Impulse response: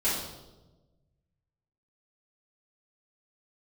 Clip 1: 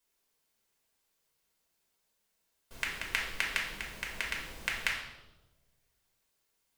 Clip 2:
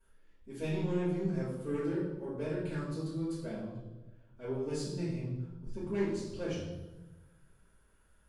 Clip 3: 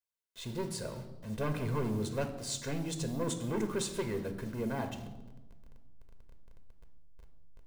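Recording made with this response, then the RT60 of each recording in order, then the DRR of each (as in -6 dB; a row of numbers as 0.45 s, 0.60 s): 2; 1.1 s, 1.1 s, 1.2 s; -2.5 dB, -11.5 dB, 6.0 dB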